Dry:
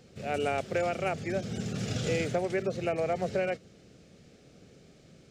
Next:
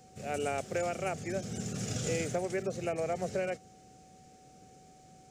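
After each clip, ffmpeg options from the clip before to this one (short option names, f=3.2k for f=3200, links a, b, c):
-af "aeval=exprs='val(0)+0.002*sin(2*PI*750*n/s)':c=same,highshelf=f=5.3k:t=q:w=1.5:g=7.5,volume=-3.5dB"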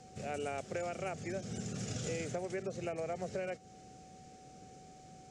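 -af "lowpass=8.1k,acompressor=threshold=-43dB:ratio=2,volume=2dB"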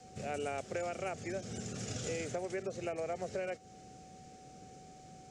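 -af "adynamicequalizer=threshold=0.00141:dfrequency=160:dqfactor=1.9:tfrequency=160:tqfactor=1.9:attack=5:release=100:ratio=0.375:range=3:mode=cutabove:tftype=bell,volume=1dB"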